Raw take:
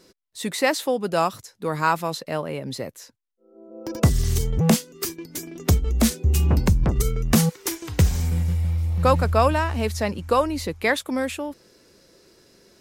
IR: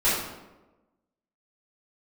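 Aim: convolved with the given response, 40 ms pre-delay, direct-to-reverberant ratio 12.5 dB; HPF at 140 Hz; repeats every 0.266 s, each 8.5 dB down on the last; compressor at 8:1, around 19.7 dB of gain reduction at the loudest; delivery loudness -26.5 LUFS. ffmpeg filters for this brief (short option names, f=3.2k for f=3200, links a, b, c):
-filter_complex "[0:a]highpass=140,acompressor=threshold=-35dB:ratio=8,aecho=1:1:266|532|798|1064:0.376|0.143|0.0543|0.0206,asplit=2[a][b];[1:a]atrim=start_sample=2205,adelay=40[c];[b][c]afir=irnorm=-1:irlink=0,volume=-27.5dB[d];[a][d]amix=inputs=2:normalize=0,volume=12dB"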